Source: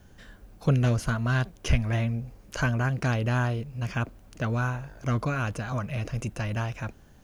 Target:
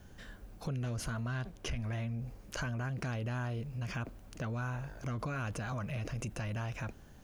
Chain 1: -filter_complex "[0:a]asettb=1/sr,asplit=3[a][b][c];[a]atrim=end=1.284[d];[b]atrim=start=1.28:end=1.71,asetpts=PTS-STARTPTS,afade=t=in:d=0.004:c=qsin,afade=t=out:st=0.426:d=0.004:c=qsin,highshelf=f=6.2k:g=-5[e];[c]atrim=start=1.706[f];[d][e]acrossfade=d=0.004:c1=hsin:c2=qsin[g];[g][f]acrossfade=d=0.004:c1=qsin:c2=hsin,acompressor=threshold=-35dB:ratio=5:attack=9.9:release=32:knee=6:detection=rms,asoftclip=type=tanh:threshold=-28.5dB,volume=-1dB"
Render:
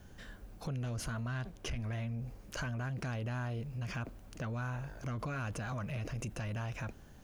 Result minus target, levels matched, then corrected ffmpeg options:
soft clip: distortion +16 dB
-filter_complex "[0:a]asettb=1/sr,asplit=3[a][b][c];[a]atrim=end=1.284[d];[b]atrim=start=1.28:end=1.71,asetpts=PTS-STARTPTS,afade=t=in:d=0.004:c=qsin,afade=t=out:st=0.426:d=0.004:c=qsin,highshelf=f=6.2k:g=-5[e];[c]atrim=start=1.706[f];[d][e]acrossfade=d=0.004:c1=hsin:c2=qsin[g];[g][f]acrossfade=d=0.004:c1=qsin:c2=hsin,acompressor=threshold=-35dB:ratio=5:attack=9.9:release=32:knee=6:detection=rms,asoftclip=type=tanh:threshold=-19.5dB,volume=-1dB"

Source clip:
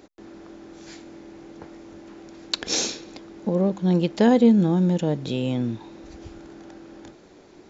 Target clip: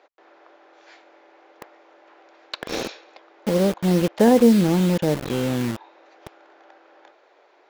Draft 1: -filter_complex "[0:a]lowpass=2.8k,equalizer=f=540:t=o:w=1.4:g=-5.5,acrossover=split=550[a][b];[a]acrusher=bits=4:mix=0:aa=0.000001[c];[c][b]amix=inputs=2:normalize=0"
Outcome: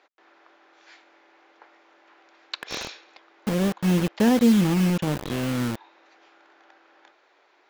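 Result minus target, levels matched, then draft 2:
500 Hz band -5.0 dB
-filter_complex "[0:a]lowpass=2.8k,equalizer=f=540:t=o:w=1.4:g=4,acrossover=split=550[a][b];[a]acrusher=bits=4:mix=0:aa=0.000001[c];[c][b]amix=inputs=2:normalize=0"

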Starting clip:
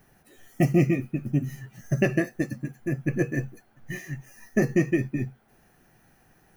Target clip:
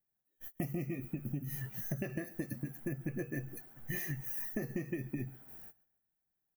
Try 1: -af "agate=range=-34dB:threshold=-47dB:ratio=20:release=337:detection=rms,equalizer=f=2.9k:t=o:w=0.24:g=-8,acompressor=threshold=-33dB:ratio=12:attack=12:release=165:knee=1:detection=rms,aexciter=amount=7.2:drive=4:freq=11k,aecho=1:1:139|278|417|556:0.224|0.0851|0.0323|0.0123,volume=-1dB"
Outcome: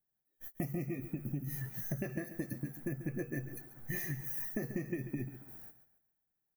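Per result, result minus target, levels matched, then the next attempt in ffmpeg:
echo-to-direct +9.5 dB; 4000 Hz band -2.5 dB
-af "agate=range=-34dB:threshold=-47dB:ratio=20:release=337:detection=rms,equalizer=f=2.9k:t=o:w=0.24:g=-8,acompressor=threshold=-33dB:ratio=12:attack=12:release=165:knee=1:detection=rms,aexciter=amount=7.2:drive=4:freq=11k,aecho=1:1:139|278|417:0.075|0.0285|0.0108,volume=-1dB"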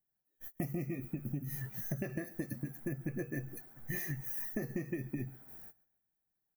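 4000 Hz band -3.0 dB
-af "agate=range=-34dB:threshold=-47dB:ratio=20:release=337:detection=rms,acompressor=threshold=-33dB:ratio=12:attack=12:release=165:knee=1:detection=rms,aexciter=amount=7.2:drive=4:freq=11k,aecho=1:1:139|278|417:0.075|0.0285|0.0108,volume=-1dB"

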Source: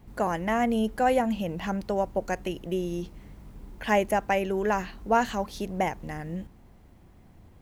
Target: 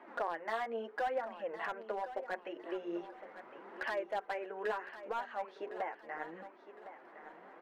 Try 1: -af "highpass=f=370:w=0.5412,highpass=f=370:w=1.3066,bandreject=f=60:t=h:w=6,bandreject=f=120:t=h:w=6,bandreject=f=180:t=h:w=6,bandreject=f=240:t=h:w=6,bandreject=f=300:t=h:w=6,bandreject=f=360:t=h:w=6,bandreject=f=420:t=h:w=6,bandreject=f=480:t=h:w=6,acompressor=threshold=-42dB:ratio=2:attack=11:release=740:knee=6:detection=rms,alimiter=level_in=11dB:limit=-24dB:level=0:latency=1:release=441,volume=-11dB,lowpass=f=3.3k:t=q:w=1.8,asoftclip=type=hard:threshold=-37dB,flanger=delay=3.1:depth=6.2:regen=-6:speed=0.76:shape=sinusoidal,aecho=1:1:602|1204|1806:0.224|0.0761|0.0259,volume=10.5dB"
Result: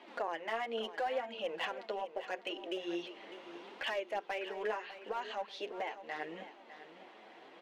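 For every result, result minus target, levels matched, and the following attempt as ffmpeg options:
4000 Hz band +11.0 dB; echo 0.457 s early; compressor: peak gain reduction -3 dB
-af "highpass=f=370:w=0.5412,highpass=f=370:w=1.3066,bandreject=f=60:t=h:w=6,bandreject=f=120:t=h:w=6,bandreject=f=180:t=h:w=6,bandreject=f=240:t=h:w=6,bandreject=f=300:t=h:w=6,bandreject=f=360:t=h:w=6,bandreject=f=420:t=h:w=6,bandreject=f=480:t=h:w=6,acompressor=threshold=-42dB:ratio=2:attack=11:release=740:knee=6:detection=rms,alimiter=level_in=11dB:limit=-24dB:level=0:latency=1:release=441,volume=-11dB,lowpass=f=1.6k:t=q:w=1.8,asoftclip=type=hard:threshold=-37dB,flanger=delay=3.1:depth=6.2:regen=-6:speed=0.76:shape=sinusoidal,aecho=1:1:602|1204|1806:0.224|0.0761|0.0259,volume=10.5dB"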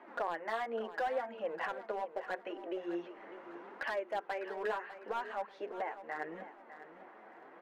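echo 0.457 s early; compressor: peak gain reduction -3 dB
-af "highpass=f=370:w=0.5412,highpass=f=370:w=1.3066,bandreject=f=60:t=h:w=6,bandreject=f=120:t=h:w=6,bandreject=f=180:t=h:w=6,bandreject=f=240:t=h:w=6,bandreject=f=300:t=h:w=6,bandreject=f=360:t=h:w=6,bandreject=f=420:t=h:w=6,bandreject=f=480:t=h:w=6,acompressor=threshold=-42dB:ratio=2:attack=11:release=740:knee=6:detection=rms,alimiter=level_in=11dB:limit=-24dB:level=0:latency=1:release=441,volume=-11dB,lowpass=f=1.6k:t=q:w=1.8,asoftclip=type=hard:threshold=-37dB,flanger=delay=3.1:depth=6.2:regen=-6:speed=0.76:shape=sinusoidal,aecho=1:1:1059|2118|3177:0.224|0.0761|0.0259,volume=10.5dB"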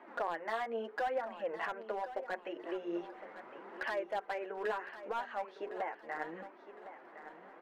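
compressor: peak gain reduction -3 dB
-af "highpass=f=370:w=0.5412,highpass=f=370:w=1.3066,bandreject=f=60:t=h:w=6,bandreject=f=120:t=h:w=6,bandreject=f=180:t=h:w=6,bandreject=f=240:t=h:w=6,bandreject=f=300:t=h:w=6,bandreject=f=360:t=h:w=6,bandreject=f=420:t=h:w=6,bandreject=f=480:t=h:w=6,acompressor=threshold=-48dB:ratio=2:attack=11:release=740:knee=6:detection=rms,alimiter=level_in=11dB:limit=-24dB:level=0:latency=1:release=441,volume=-11dB,lowpass=f=1.6k:t=q:w=1.8,asoftclip=type=hard:threshold=-37dB,flanger=delay=3.1:depth=6.2:regen=-6:speed=0.76:shape=sinusoidal,aecho=1:1:1059|2118|3177:0.224|0.0761|0.0259,volume=10.5dB"

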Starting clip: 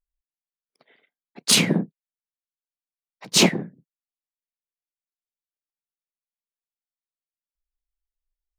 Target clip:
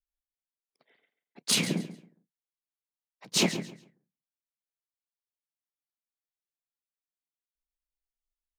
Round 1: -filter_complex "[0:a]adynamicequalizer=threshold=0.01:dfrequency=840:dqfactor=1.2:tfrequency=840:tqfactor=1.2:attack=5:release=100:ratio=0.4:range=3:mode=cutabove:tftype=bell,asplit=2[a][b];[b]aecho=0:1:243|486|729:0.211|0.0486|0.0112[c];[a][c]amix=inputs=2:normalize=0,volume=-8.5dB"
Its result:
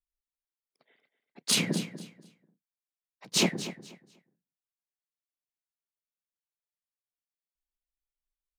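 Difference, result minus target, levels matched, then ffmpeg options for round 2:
echo 0.105 s late
-filter_complex "[0:a]adynamicequalizer=threshold=0.01:dfrequency=840:dqfactor=1.2:tfrequency=840:tqfactor=1.2:attack=5:release=100:ratio=0.4:range=3:mode=cutabove:tftype=bell,asplit=2[a][b];[b]aecho=0:1:138|276|414:0.211|0.0486|0.0112[c];[a][c]amix=inputs=2:normalize=0,volume=-8.5dB"

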